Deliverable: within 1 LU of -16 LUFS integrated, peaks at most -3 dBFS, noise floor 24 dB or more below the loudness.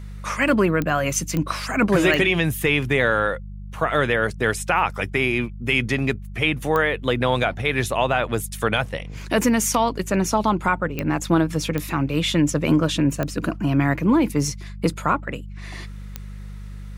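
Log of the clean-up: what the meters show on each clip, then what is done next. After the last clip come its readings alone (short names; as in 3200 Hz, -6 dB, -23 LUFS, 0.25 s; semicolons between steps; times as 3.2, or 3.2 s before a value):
clicks 8; hum 50 Hz; harmonics up to 200 Hz; hum level -33 dBFS; loudness -21.5 LUFS; peak -6.5 dBFS; loudness target -16.0 LUFS
-> de-click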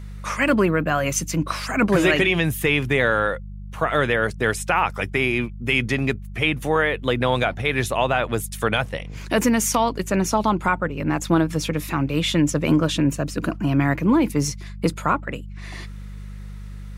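clicks 0; hum 50 Hz; harmonics up to 200 Hz; hum level -33 dBFS
-> de-hum 50 Hz, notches 4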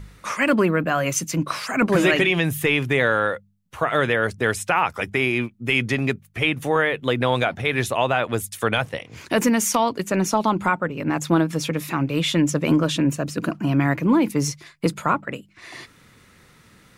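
hum none; loudness -21.5 LUFS; peak -6.5 dBFS; loudness target -16.0 LUFS
-> gain +5.5 dB; limiter -3 dBFS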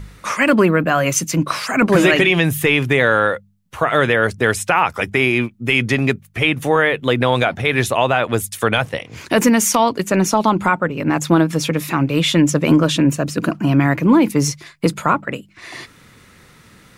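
loudness -16.5 LUFS; peak -3.0 dBFS; noise floor -48 dBFS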